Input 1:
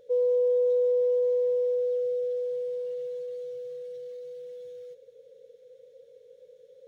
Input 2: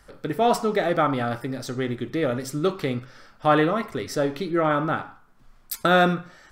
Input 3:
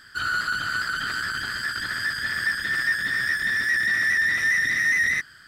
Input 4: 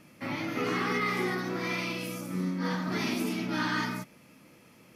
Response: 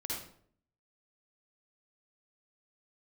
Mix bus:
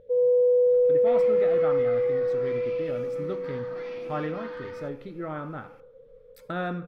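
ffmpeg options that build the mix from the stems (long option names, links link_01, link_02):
-filter_complex "[0:a]aemphasis=mode=reproduction:type=bsi,volume=-2dB,asplit=2[link_01][link_02];[link_02]volume=-14dB[link_03];[1:a]adelay=650,volume=-14dB,asplit=2[link_04][link_05];[link_05]volume=-21.5dB[link_06];[3:a]acrossover=split=5900[link_07][link_08];[link_08]acompressor=threshold=-56dB:ratio=4:attack=1:release=60[link_09];[link_07][link_09]amix=inputs=2:normalize=0,highpass=500,acompressor=threshold=-39dB:ratio=6,adelay=850,volume=-3dB[link_10];[4:a]atrim=start_sample=2205[link_11];[link_03][link_06]amix=inputs=2:normalize=0[link_12];[link_12][link_11]afir=irnorm=-1:irlink=0[link_13];[link_01][link_04][link_10][link_13]amix=inputs=4:normalize=0,bass=frequency=250:gain=6,treble=frequency=4000:gain=-14"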